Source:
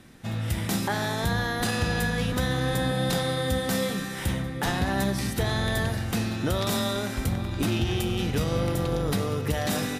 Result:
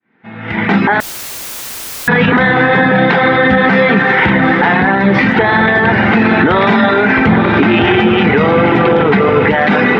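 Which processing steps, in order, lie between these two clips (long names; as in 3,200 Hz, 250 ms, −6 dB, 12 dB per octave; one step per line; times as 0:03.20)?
fade in at the beginning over 2.41 s
loudspeaker in its box 200–2,800 Hz, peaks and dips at 210 Hz +6 dB, 420 Hz +5 dB, 890 Hz +8 dB, 1,500 Hz +7 dB, 2,100 Hz +9 dB
notch filter 560 Hz, Q 13
automatic gain control gain up to 12 dB
reverb reduction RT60 0.85 s
feedback delay with all-pass diffusion 934 ms, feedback 47%, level −11.5 dB
on a send at −17.5 dB: convolution reverb RT60 0.50 s, pre-delay 86 ms
0:01.00–0:02.08: on the sum: wrap-around overflow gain 38 dB
boost into a limiter +18.5 dB
level −1 dB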